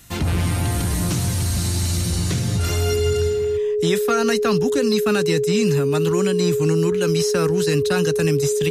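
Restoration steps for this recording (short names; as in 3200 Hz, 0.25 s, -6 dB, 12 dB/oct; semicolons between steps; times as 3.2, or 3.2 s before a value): notch 420 Hz, Q 30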